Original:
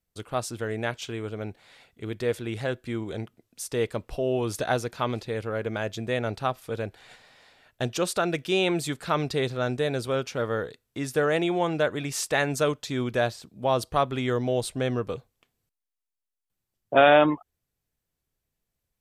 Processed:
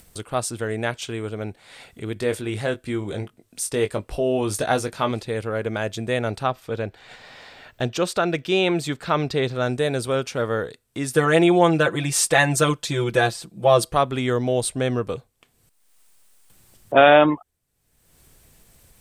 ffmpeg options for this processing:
ffmpeg -i in.wav -filter_complex "[0:a]asettb=1/sr,asplit=3[link_01][link_02][link_03];[link_01]atrim=end=2.144[link_04];[link_02]atrim=start=2.14:end=5.11,asetpts=PTS-STARTPTS,afade=type=in:duration=0.004:curve=qsin,afade=type=out:start_time=2.966:duration=0.004:curve=qsin,asplit=2[link_05][link_06];[link_06]adelay=20,volume=-8dB[link_07];[link_05][link_07]amix=inputs=2:normalize=0,atrim=end_sample=130977[link_08];[link_03]atrim=start=5.106[link_09];[link_04][link_08]acrossfade=duration=0.004:curve1=hsin:curve2=qsin[link_10];[link_10][link_09]acrossfade=duration=0.004:curve1=qsin:curve2=hsin,asettb=1/sr,asplit=3[link_11][link_12][link_13];[link_11]atrim=end=6.434[link_14];[link_12]atrim=start=6.43:end=9.55,asetpts=PTS-STARTPTS,afade=type=in:duration=0.004:curve=qsin,afade=type=out:start_time=3.116:duration=0.004:curve=qsin,equalizer=frequency=9800:width_type=o:width=0.69:gain=-14.5[link_15];[link_13]atrim=start=9.546[link_16];[link_14][link_15]acrossfade=duration=0.004:curve1=hsin:curve2=qsin[link_17];[link_17][link_16]acrossfade=duration=0.004:curve1=qsin:curve2=hsin,asettb=1/sr,asplit=3[link_18][link_19][link_20];[link_18]atrim=end=11.144[link_21];[link_19]atrim=start=11.14:end=13.94,asetpts=PTS-STARTPTS,afade=type=in:duration=0.004:curve=qsin,afade=type=out:start_time=2.796:duration=0.004:curve=qsin,aecho=1:1:5.9:1,atrim=end_sample=123480[link_22];[link_20]atrim=start=13.936[link_23];[link_21][link_22]acrossfade=duration=0.004:curve1=hsin:curve2=qsin[link_24];[link_24][link_23]acrossfade=duration=0.004:curve1=qsin:curve2=hsin,acompressor=mode=upward:threshold=-38dB:ratio=2.5,equalizer=frequency=8700:width_type=o:width=0.3:gain=7.5,volume=4dB" out.wav

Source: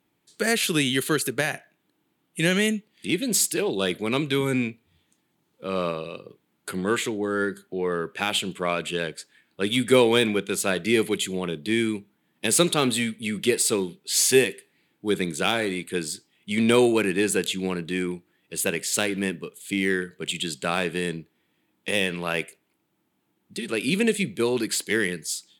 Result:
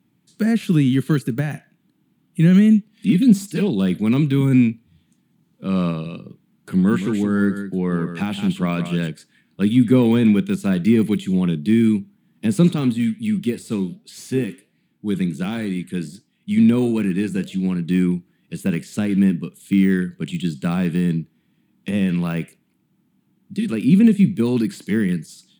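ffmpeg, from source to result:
ffmpeg -i in.wav -filter_complex "[0:a]asettb=1/sr,asplit=3[link_01][link_02][link_03];[link_01]atrim=end=2.924[link_04];[link_02]atrim=start=2.92:end=3.68,asetpts=PTS-STARTPTS,afade=type=in:duration=0.004:curve=qsin,afade=type=out:start_time=0.756:duration=0.004:curve=qsin,aecho=1:1:4.4:0.71,atrim=end_sample=33516[link_05];[link_03]atrim=start=3.676[link_06];[link_04][link_05]acrossfade=duration=0.004:curve1=hsin:curve2=qsin[link_07];[link_07][link_06]acrossfade=duration=0.004:curve1=qsin:curve2=hsin,asettb=1/sr,asplit=3[link_08][link_09][link_10];[link_08]atrim=end=6.754[link_11];[link_09]atrim=start=6.75:end=9.09,asetpts=PTS-STARTPTS,afade=type=in:duration=0.004:curve=qsin,afade=type=out:start_time=2.336:duration=0.004:curve=qsin,aecho=1:1:168:0.335,atrim=end_sample=103194[link_12];[link_10]atrim=start=9.086[link_13];[link_11][link_12]acrossfade=duration=0.004:curve1=hsin:curve2=qsin[link_14];[link_14][link_13]acrossfade=duration=0.004:curve1=qsin:curve2=hsin,asettb=1/sr,asplit=3[link_15][link_16][link_17];[link_15]atrim=end=12.754[link_18];[link_16]atrim=start=12.75:end=17.89,asetpts=PTS-STARTPTS,afade=type=in:duration=0.004:curve=qsin,afade=type=out:start_time=5.136:duration=0.004:curve=qsin,flanger=delay=3.1:depth=6.6:regen=-87:speed=1.4:shape=triangular[link_19];[link_17]atrim=start=17.886[link_20];[link_18][link_19]acrossfade=duration=0.004:curve1=hsin:curve2=qsin[link_21];[link_21][link_20]acrossfade=duration=0.004:curve1=qsin:curve2=hsin,deesser=0.85,highpass=98,lowshelf=frequency=310:width_type=q:width=1.5:gain=12" out.wav

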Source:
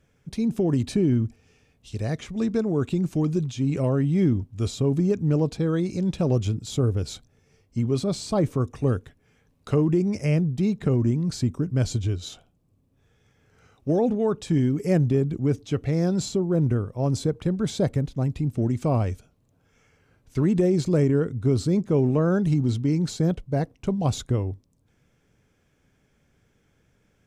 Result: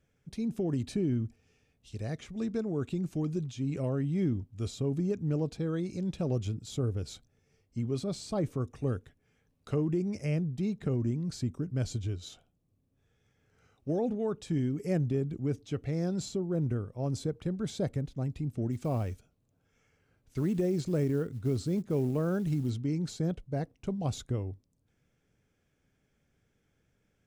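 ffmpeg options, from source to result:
ffmpeg -i in.wav -filter_complex "[0:a]asplit=3[link_01][link_02][link_03];[link_01]afade=type=out:start_time=18.71:duration=0.02[link_04];[link_02]acrusher=bits=8:mode=log:mix=0:aa=0.000001,afade=type=in:start_time=18.71:duration=0.02,afade=type=out:start_time=22.69:duration=0.02[link_05];[link_03]afade=type=in:start_time=22.69:duration=0.02[link_06];[link_04][link_05][link_06]amix=inputs=3:normalize=0,equalizer=frequency=1000:width=4.4:gain=-3.5,volume=-8.5dB" out.wav

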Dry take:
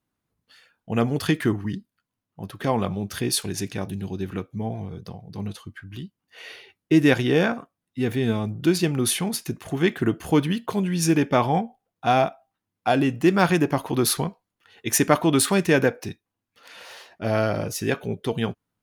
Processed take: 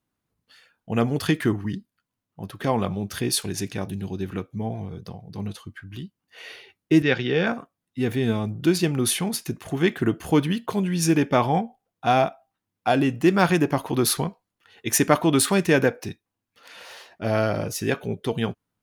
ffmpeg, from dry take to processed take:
ffmpeg -i in.wav -filter_complex "[0:a]asettb=1/sr,asplit=3[link_01][link_02][link_03];[link_01]atrim=end=7.024[link_04];[link_02]atrim=start=7.02:end=7.47,asetpts=PTS-STARTPTS,afade=type=in:duration=0.004:curve=qsin,afade=type=out:start_time=0.446:duration=0.004:curve=qsin,highpass=140,equalizer=frequency=290:width_type=q:width=4:gain=-9,equalizer=frequency=650:width_type=q:width=4:gain=-8,equalizer=frequency=1000:width_type=q:width=4:gain=-8,lowpass=frequency=4800:width=0.5412,lowpass=frequency=4800:width=1.3066[link_05];[link_03]atrim=start=7.466[link_06];[link_04][link_05]acrossfade=duration=0.004:curve1=hsin:curve2=qsin[link_07];[link_07][link_06]acrossfade=duration=0.004:curve1=qsin:curve2=hsin" out.wav

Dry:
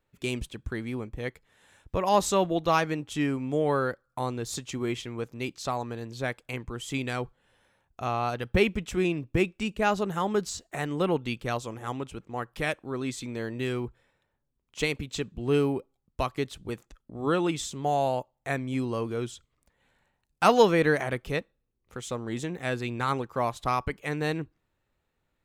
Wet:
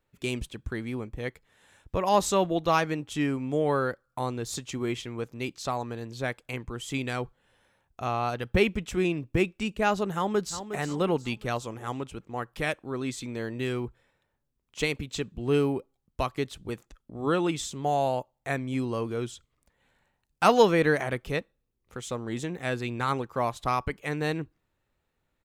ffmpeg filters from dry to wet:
ffmpeg -i in.wav -filter_complex "[0:a]asplit=2[link_01][link_02];[link_02]afade=type=in:start_time=10.14:duration=0.01,afade=type=out:start_time=10.63:duration=0.01,aecho=0:1:360|720|1080|1440:0.298538|0.119415|0.0477661|0.0191064[link_03];[link_01][link_03]amix=inputs=2:normalize=0" out.wav

